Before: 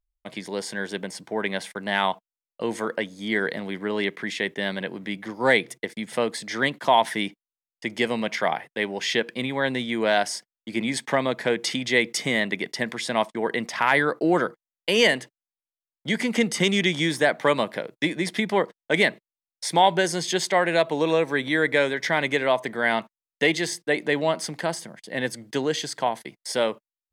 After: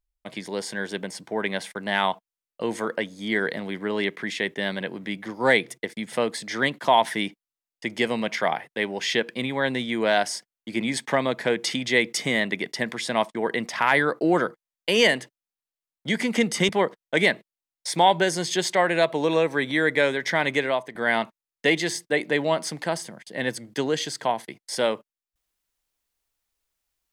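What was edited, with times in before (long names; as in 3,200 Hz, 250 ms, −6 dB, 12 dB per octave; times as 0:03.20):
0:16.69–0:18.46: remove
0:22.37–0:22.72: fade out, to −12.5 dB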